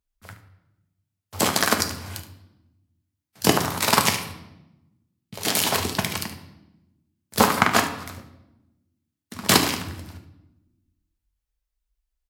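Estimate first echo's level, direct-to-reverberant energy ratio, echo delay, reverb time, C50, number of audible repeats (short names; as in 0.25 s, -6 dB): -12.5 dB, 3.5 dB, 73 ms, 0.95 s, 8.5 dB, 1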